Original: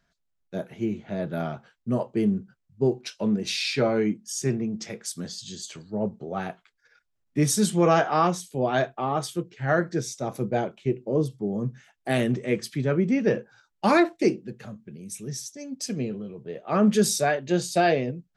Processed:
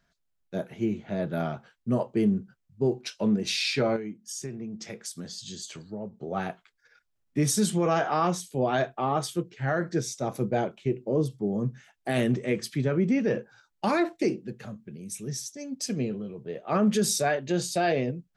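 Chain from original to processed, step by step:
brickwall limiter −16 dBFS, peak gain reduction 7.5 dB
0:03.96–0:06.23: downward compressor 4 to 1, threshold −35 dBFS, peak gain reduction 12 dB

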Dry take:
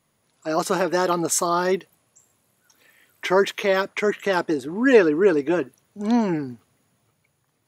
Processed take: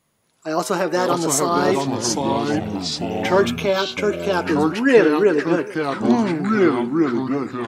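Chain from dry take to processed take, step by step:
delay with pitch and tempo change per echo 381 ms, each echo −4 semitones, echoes 3
0:03.43–0:04.47: Butterworth band-reject 1,900 Hz, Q 4.9
hum removal 126.4 Hz, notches 23
on a send: single-tap delay 430 ms −19.5 dB
on the sum: level +1.5 dB

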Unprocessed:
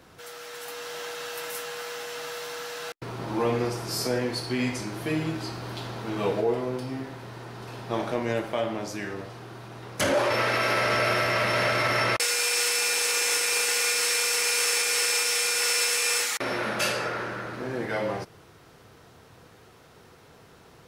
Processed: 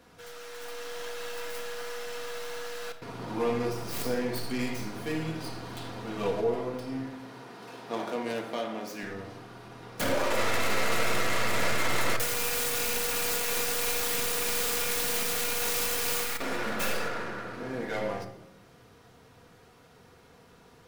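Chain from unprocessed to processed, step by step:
stylus tracing distortion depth 0.46 ms
0:07.07–0:09.03: high-pass filter 210 Hz 12 dB per octave
rectangular room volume 2,900 cubic metres, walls furnished, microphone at 1.8 metres
level −5 dB

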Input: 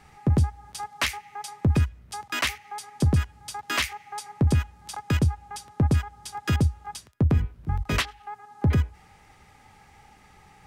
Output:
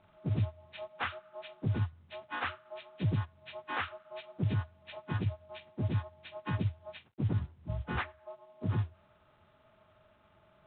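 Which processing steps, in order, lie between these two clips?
partials spread apart or drawn together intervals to 77%
noise that follows the level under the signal 22 dB
level −8 dB
G.726 32 kbit/s 8,000 Hz

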